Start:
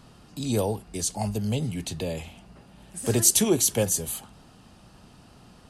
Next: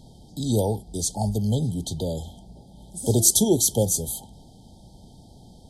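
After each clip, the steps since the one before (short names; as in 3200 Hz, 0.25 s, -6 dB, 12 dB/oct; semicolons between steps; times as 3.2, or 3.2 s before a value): FFT band-reject 930–3100 Hz; low shelf 120 Hz +6 dB; gain +1.5 dB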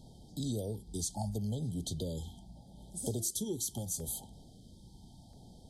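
compressor 8:1, threshold -26 dBFS, peak gain reduction 14 dB; LFO notch saw down 0.75 Hz 370–1900 Hz; gain -6 dB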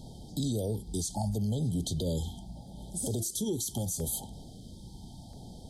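limiter -31.5 dBFS, peak gain reduction 10 dB; gain +8 dB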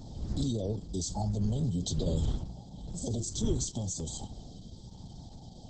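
wind noise 110 Hz -38 dBFS; vibrato 5.6 Hz 31 cents; Opus 10 kbps 48000 Hz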